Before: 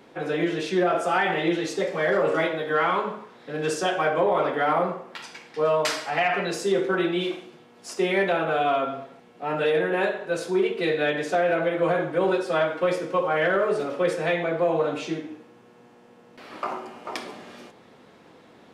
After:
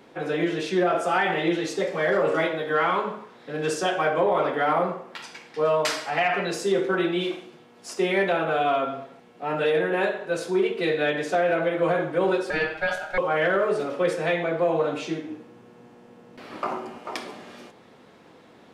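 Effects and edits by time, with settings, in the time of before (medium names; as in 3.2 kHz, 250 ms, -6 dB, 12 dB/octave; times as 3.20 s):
12.50–13.18 s: ring modulator 1.1 kHz
15.27–16.98 s: bass shelf 400 Hz +6 dB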